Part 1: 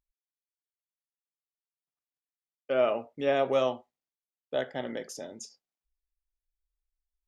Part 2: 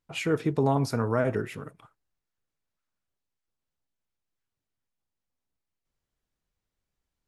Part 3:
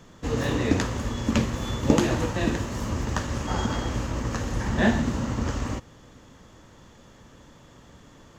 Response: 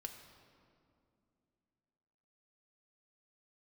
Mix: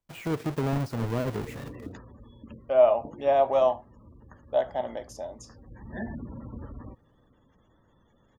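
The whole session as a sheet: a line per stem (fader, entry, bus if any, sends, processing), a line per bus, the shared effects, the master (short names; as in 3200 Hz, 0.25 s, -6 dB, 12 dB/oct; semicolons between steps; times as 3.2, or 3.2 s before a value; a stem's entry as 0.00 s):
-5.5 dB, 0.00 s, no send, band shelf 790 Hz +13.5 dB 1.1 oct
-6.5 dB, 0.00 s, no send, half-waves squared off; de-esser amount 65%
-12.5 dB, 1.15 s, no send, spectral gate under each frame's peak -20 dB strong; auto duck -11 dB, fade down 1.60 s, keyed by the first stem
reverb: off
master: dry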